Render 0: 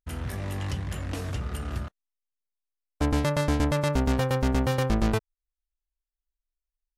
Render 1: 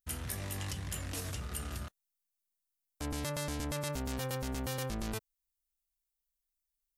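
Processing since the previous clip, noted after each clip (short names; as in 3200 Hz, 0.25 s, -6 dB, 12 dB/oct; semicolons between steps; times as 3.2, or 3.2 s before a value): limiter -25 dBFS, peak gain reduction 9.5 dB; pre-emphasis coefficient 0.8; gain +6.5 dB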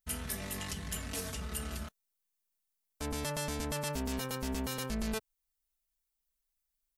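comb 4.6 ms, depth 74%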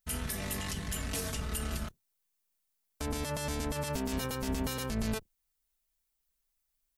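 octaver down 1 oct, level -6 dB; limiter -27 dBFS, peak gain reduction 7 dB; gain +3.5 dB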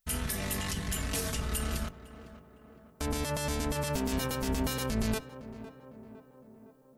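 tape echo 0.508 s, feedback 69%, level -11.5 dB, low-pass 1300 Hz; gain +2.5 dB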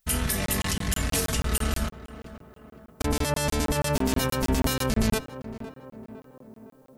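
crackling interface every 0.16 s, samples 1024, zero, from 0.46; gain +7 dB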